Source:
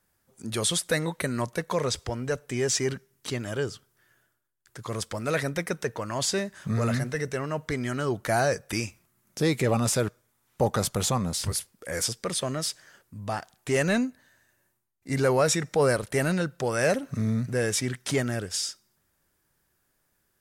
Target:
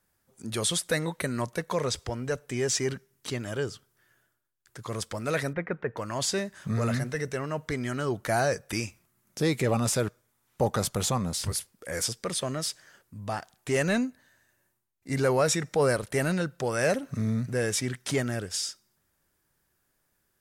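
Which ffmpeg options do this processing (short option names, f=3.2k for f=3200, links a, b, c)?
-filter_complex "[0:a]asettb=1/sr,asplit=3[a][b][c];[a]atrim=end=5.534[d];[b]atrim=start=5.53:end=5.97,asetpts=PTS-STARTPTS,afade=t=in:d=0.004:c=qsin,afade=t=out:st=0.436:d=0.004:c=qsin,lowpass=f=2.2k:w=0.5412,lowpass=f=2.2k:w=1.3066[e];[c]atrim=start=5.966[f];[d][e]acrossfade=d=0.004:c1=hsin:c2=qsin[g];[g][f]acrossfade=d=0.004:c1=qsin:c2=hsin,volume=-1.5dB"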